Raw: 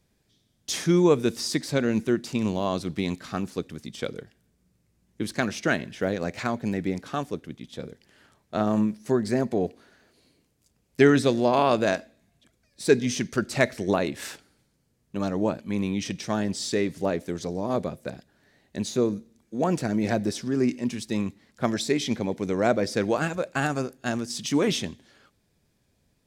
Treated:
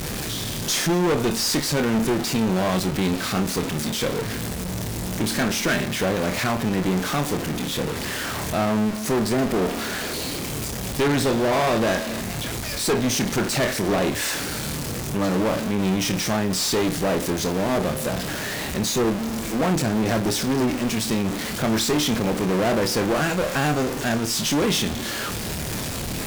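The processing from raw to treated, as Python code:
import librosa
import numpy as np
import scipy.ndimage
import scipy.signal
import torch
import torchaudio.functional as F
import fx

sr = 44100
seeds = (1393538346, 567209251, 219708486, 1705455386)

y = x + 0.5 * 10.0 ** (-25.5 / 20.0) * np.sign(x)
y = fx.room_flutter(y, sr, wall_m=4.6, rt60_s=0.21)
y = fx.tube_stage(y, sr, drive_db=24.0, bias=0.75)
y = y * 10.0 ** (6.5 / 20.0)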